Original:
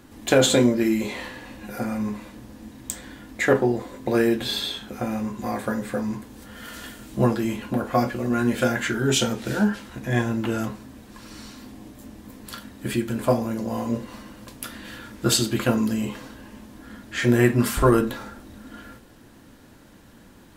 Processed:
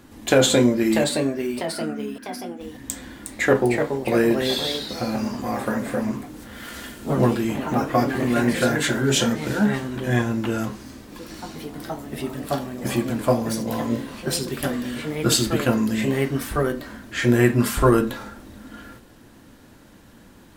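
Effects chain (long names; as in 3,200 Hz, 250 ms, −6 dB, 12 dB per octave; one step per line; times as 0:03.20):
0:01.04–0:02.61: pair of resonant band-passes 600 Hz, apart 2.6 octaves
delay with pitch and tempo change per echo 678 ms, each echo +2 semitones, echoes 3, each echo −6 dB
level +1 dB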